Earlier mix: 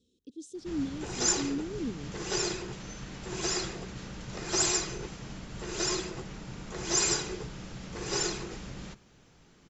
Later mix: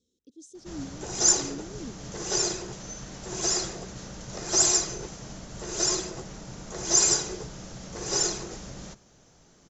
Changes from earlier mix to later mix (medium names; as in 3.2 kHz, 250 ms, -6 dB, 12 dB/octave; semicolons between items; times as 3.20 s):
speech -6.5 dB; master: add fifteen-band graphic EQ 630 Hz +6 dB, 2.5 kHz -4 dB, 6.3 kHz +9 dB